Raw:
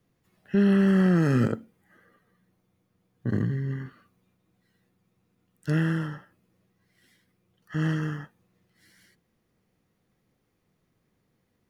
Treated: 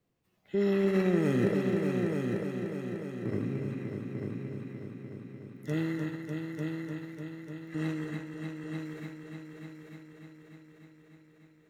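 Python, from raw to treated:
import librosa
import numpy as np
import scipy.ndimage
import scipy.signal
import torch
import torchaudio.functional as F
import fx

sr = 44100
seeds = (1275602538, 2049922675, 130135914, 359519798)

y = fx.echo_heads(x, sr, ms=298, heads='all three', feedback_pct=59, wet_db=-8.0)
y = fx.formant_shift(y, sr, semitones=4)
y = y * librosa.db_to_amplitude(-7.0)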